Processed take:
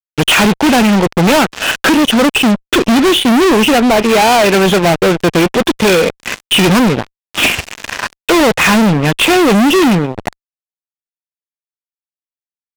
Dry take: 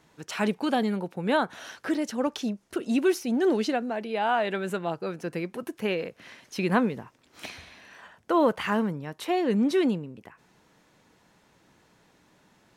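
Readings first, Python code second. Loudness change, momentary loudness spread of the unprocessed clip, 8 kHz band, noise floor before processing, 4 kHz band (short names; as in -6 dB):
+17.0 dB, 14 LU, +24.5 dB, -63 dBFS, +25.0 dB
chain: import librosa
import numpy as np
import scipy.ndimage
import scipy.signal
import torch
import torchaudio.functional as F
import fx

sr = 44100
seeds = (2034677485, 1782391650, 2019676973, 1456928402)

y = fx.freq_compress(x, sr, knee_hz=2400.0, ratio=4.0)
y = fx.transient(y, sr, attack_db=7, sustain_db=-7)
y = fx.fuzz(y, sr, gain_db=44.0, gate_db=-46.0)
y = y * librosa.db_to_amplitude(5.5)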